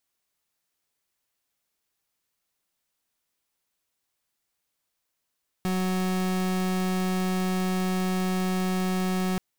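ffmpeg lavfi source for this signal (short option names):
-f lavfi -i "aevalsrc='0.0501*(2*lt(mod(185*t,1),0.37)-1)':d=3.73:s=44100"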